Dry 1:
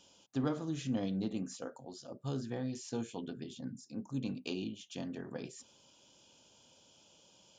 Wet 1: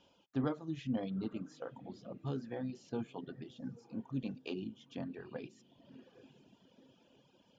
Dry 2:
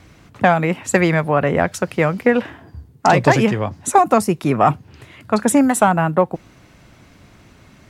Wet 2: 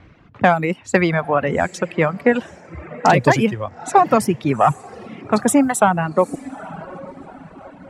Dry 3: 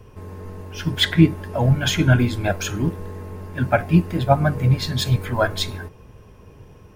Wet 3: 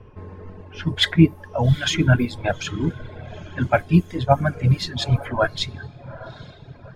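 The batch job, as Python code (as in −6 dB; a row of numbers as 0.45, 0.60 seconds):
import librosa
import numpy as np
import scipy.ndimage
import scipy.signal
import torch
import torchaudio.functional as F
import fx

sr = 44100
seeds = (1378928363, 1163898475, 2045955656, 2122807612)

y = fx.echo_diffused(x, sr, ms=845, feedback_pct=44, wet_db=-13.5)
y = fx.dereverb_blind(y, sr, rt60_s=1.5)
y = fx.env_lowpass(y, sr, base_hz=2600.0, full_db=-13.0)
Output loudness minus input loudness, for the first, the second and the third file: −2.0, −1.0, −1.0 LU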